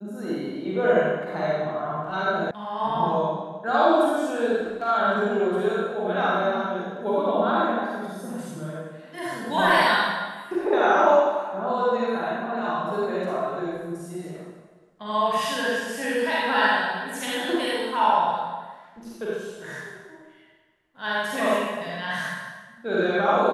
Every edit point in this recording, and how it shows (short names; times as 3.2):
2.51 sound cut off